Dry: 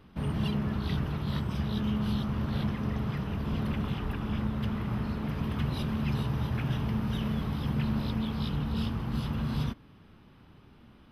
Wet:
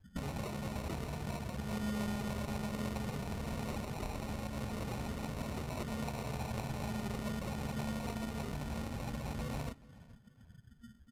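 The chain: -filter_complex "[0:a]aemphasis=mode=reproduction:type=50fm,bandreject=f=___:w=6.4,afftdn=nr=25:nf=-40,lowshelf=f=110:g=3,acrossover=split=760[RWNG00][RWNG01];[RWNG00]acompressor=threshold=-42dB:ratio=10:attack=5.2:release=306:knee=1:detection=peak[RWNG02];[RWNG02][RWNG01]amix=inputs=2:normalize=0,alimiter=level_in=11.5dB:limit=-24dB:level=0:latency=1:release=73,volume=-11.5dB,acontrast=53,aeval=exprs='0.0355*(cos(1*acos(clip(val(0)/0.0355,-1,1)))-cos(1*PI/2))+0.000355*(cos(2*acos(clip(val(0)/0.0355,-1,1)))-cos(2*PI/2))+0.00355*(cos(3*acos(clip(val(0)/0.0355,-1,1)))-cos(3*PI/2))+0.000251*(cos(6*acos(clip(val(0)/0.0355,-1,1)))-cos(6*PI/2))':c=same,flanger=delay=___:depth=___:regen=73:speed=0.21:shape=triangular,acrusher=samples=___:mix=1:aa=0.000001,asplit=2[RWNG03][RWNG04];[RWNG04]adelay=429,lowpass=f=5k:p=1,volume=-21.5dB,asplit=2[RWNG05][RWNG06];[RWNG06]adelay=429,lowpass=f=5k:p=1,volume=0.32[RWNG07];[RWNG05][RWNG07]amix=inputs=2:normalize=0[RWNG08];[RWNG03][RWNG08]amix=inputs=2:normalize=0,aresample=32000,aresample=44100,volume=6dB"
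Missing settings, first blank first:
1.4k, 3.5, 1.4, 27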